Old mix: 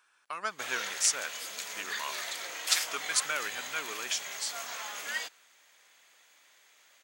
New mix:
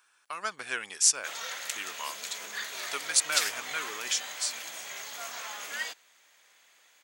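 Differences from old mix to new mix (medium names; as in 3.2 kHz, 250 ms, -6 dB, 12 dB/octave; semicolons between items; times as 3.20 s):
speech: add treble shelf 5.2 kHz +7 dB; background: entry +0.65 s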